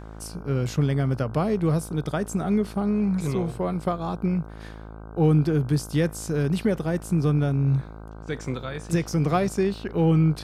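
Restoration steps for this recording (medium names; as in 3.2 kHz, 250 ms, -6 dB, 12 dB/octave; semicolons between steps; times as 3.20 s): de-hum 54 Hz, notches 29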